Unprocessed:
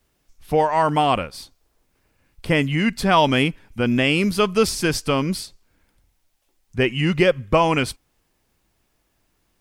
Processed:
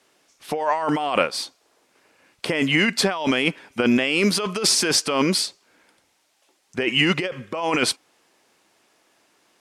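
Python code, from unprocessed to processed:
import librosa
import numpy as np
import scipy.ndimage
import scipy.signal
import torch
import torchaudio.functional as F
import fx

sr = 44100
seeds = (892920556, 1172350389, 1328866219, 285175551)

y = scipy.signal.sosfilt(scipy.signal.butter(2, 340.0, 'highpass', fs=sr, output='sos'), x)
y = fx.over_compress(y, sr, threshold_db=-26.0, ratio=-1.0)
y = scipy.signal.sosfilt(scipy.signal.butter(2, 9200.0, 'lowpass', fs=sr, output='sos'), y)
y = y * librosa.db_to_amplitude(5.0)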